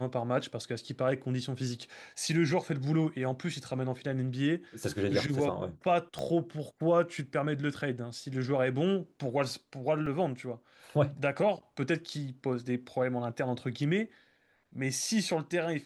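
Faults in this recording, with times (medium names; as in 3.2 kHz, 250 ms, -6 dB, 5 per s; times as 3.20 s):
6.19 s: pop -24 dBFS
10.06 s: dropout 3.5 ms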